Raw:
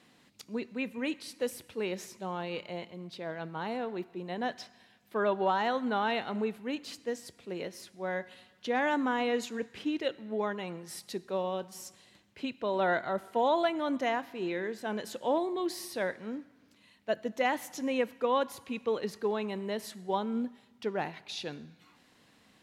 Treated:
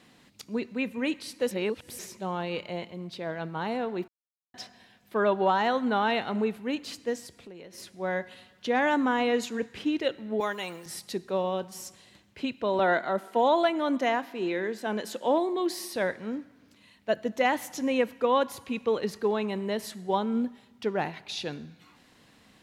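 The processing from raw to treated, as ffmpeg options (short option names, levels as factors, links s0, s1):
-filter_complex "[0:a]asettb=1/sr,asplit=3[s0][s1][s2];[s0]atrim=end=7.264[s3];[s1]atrim=start=7.26:end=7.78,asetpts=PTS-STARTPTS,afade=t=in:d=0.004:c=qsin,afade=t=out:st=0.516:d=0.004:c=qsin,acompressor=threshold=0.00501:ratio=10:attack=3.2:release=140:knee=1:detection=peak[s4];[s2]atrim=start=7.776[s5];[s3][s4]acrossfade=d=0.004:c1=hsin:c2=qsin[s6];[s6][s5]acrossfade=d=0.004:c1=qsin:c2=hsin,asettb=1/sr,asplit=3[s7][s8][s9];[s7]atrim=end=10.404[s10];[s8]atrim=start=10.4:end=10.86,asetpts=PTS-STARTPTS,afade=t=in:d=0.004:c=qsin,afade=t=out:st=0.456:d=0.004:c=qsin,aemphasis=mode=production:type=riaa[s11];[s9]atrim=start=10.856[s12];[s10][s11]acrossfade=d=0.004:c1=hsin:c2=qsin[s13];[s13][s12]acrossfade=d=0.004:c1=qsin:c2=hsin,asettb=1/sr,asplit=3[s14][s15][s16];[s14]atrim=end=12.794[s17];[s15]atrim=start=12.79:end=15.96,asetpts=PTS-STARTPTS,afade=t=in:d=0.004:c=qsin,afade=t=out:st=3.166:d=0.004:c=qsin,highpass=f=180:w=0.5412,highpass=f=180:w=1.3066[s18];[s16]atrim=start=15.956[s19];[s17][s18]acrossfade=d=0.004:c1=hsin:c2=qsin[s20];[s20][s19]acrossfade=d=0.004:c1=qsin:c2=hsin,asplit=5[s21][s22][s23][s24][s25];[s21]atrim=end=1.512[s26];[s22]atrim=start=1.508:end=1.992,asetpts=PTS-STARTPTS,areverse[s27];[s23]atrim=start=1.988:end=4.08,asetpts=PTS-STARTPTS,afade=t=out:st=2.088:d=0.004:c=hsin[s28];[s24]atrim=start=4.08:end=4.54,asetpts=PTS-STARTPTS,volume=0[s29];[s25]atrim=start=4.54,asetpts=PTS-STARTPTS,afade=t=in:d=0.004:c=hsin[s30];[s26][s27]acrossfade=d=0.004:c1=hsin:c2=hsin[s31];[s28][s29][s30]concat=n=3:v=0:a=1[s32];[s31][s32]acrossfade=d=0.004:c1=hsin:c2=hsin,lowshelf=f=91:g=6.5,volume=1.58"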